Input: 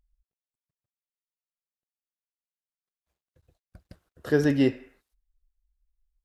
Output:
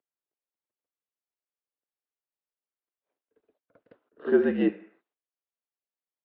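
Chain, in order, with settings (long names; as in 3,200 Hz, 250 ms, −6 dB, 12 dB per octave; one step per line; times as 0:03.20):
spectral tilt −3.5 dB per octave
single-sideband voice off tune −62 Hz 390–3,500 Hz
on a send: backwards echo 52 ms −11 dB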